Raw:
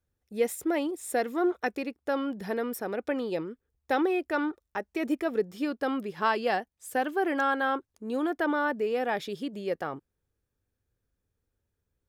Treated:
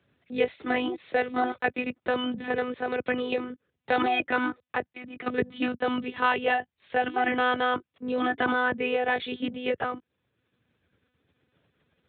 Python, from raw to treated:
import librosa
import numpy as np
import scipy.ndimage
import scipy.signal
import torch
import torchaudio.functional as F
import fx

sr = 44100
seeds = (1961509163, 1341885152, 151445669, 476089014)

y = fx.lpc_monotone(x, sr, seeds[0], pitch_hz=250.0, order=16)
y = scipy.signal.sosfilt(scipy.signal.butter(4, 83.0, 'highpass', fs=sr, output='sos'), y)
y = fx.level_steps(y, sr, step_db=24, at=(4.86, 5.26), fade=0.02)
y = fx.peak_eq(y, sr, hz=2700.0, db=6.5, octaves=1.7)
y = fx.band_squash(y, sr, depth_pct=40)
y = y * 10.0 ** (1.5 / 20.0)